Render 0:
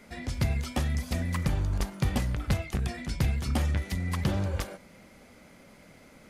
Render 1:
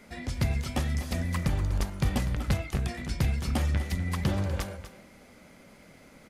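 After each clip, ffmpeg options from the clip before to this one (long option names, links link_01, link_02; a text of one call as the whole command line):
ffmpeg -i in.wav -af "aecho=1:1:246:0.251" out.wav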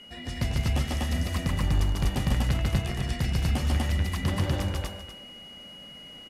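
ffmpeg -i in.wav -af "aeval=exprs='val(0)+0.00631*sin(2*PI*2900*n/s)':channel_layout=same,aecho=1:1:145.8|244.9:0.891|1,volume=-2.5dB" out.wav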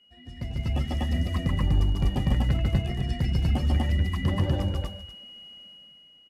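ffmpeg -i in.wav -af "afftdn=noise_reduction=12:noise_floor=-33,dynaudnorm=framelen=130:gausssize=11:maxgain=10.5dB,volume=-8dB" out.wav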